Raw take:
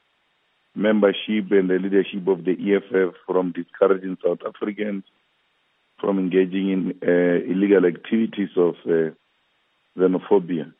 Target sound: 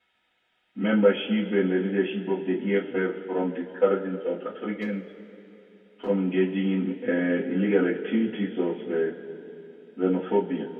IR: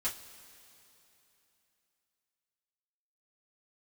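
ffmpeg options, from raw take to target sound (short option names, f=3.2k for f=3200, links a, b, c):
-filter_complex "[0:a]asuperstop=centerf=1100:order=4:qfactor=4.1,asettb=1/sr,asplit=3[a][b][c];[a]atrim=end=4.794[d];[b]atrim=start=4.79:end=6.07,asetpts=PTS-STARTPTS,afade=t=in:d=0.004:c=qsin,afade=t=out:st=1.276:d=0.004:c=qsin,volume=16.5dB,asoftclip=hard,volume=-16.5dB[e];[c]atrim=start=6.066[f];[d][e]acrossfade=d=0.004:c1=hsin:c2=qsin[g];[g][f]acrossfade=d=0.004:c1=qsin:c2=hsin[h];[1:a]atrim=start_sample=2205[i];[h][i]afir=irnorm=-1:irlink=0,volume=-6.5dB"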